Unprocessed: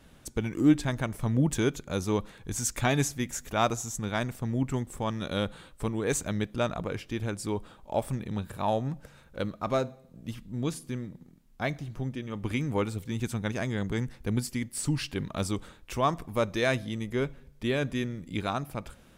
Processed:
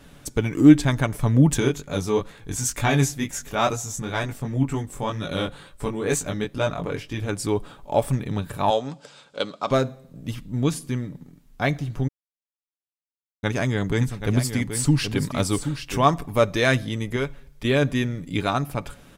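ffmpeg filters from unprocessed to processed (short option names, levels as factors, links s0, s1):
-filter_complex "[0:a]asplit=3[s0][s1][s2];[s0]afade=t=out:st=1.59:d=0.02[s3];[s1]flanger=delay=18.5:depth=4.8:speed=2.1,afade=t=in:st=1.59:d=0.02,afade=t=out:st=7.28:d=0.02[s4];[s2]afade=t=in:st=7.28:d=0.02[s5];[s3][s4][s5]amix=inputs=3:normalize=0,asettb=1/sr,asplit=3[s6][s7][s8];[s6]atrim=end=8.704[s9];[s7]atrim=start=8.7:end=9.71,asetpts=PTS-STARTPTS,afade=t=in:d=0.004:c=qsin,afade=t=out:st=1.006:d=0.004:c=qsin,highpass=300,equalizer=f=330:t=q:w=4:g=-5,equalizer=f=1800:t=q:w=4:g=-6,equalizer=f=3300:t=q:w=4:g=7,equalizer=f=4800:t=q:w=4:g=9,equalizer=f=7600:t=q:w=4:g=6,lowpass=f=8800:w=0.5412,lowpass=f=8800:w=1.3066[s10];[s8]atrim=start=9.706[s11];[s9][s10]acrossfade=d=0.004:c1=hsin:c2=qsin[s12];[s12][s11]acrossfade=d=0.004:c1=qsin:c2=hsin,asplit=3[s13][s14][s15];[s13]afade=t=out:st=13.99:d=0.02[s16];[s14]aecho=1:1:779:0.376,afade=t=in:st=13.99:d=0.02,afade=t=out:st=16.04:d=0.02[s17];[s15]afade=t=in:st=16.04:d=0.02[s18];[s16][s17][s18]amix=inputs=3:normalize=0,asettb=1/sr,asplit=3[s19][s20][s21];[s19]atrim=end=17.164[s22];[s20]atrim=start=17.16:end=17.65,asetpts=PTS-STARTPTS,afade=t=in:d=0.004:c=qsin,afade=t=out:st=0.486:d=0.004:c=qsin,equalizer=f=210:t=o:w=2.6:g=-8[s23];[s21]atrim=start=17.646[s24];[s22][s23]acrossfade=d=0.004:c1=hsin:c2=qsin[s25];[s25][s24]acrossfade=d=0.004:c1=qsin:c2=hsin,asplit=3[s26][s27][s28];[s26]atrim=end=12.08,asetpts=PTS-STARTPTS,afade=t=out:st=12.076:d=0.004:c=hsin[s29];[s27]atrim=start=12.08:end=13.43,asetpts=PTS-STARTPTS,volume=0[s30];[s28]atrim=start=13.43,asetpts=PTS-STARTPTS,afade=t=in:d=0.004:c=hsin[s31];[s29][s30][s31]concat=n=3:v=0:a=1,aecho=1:1:7:0.36,volume=2.24"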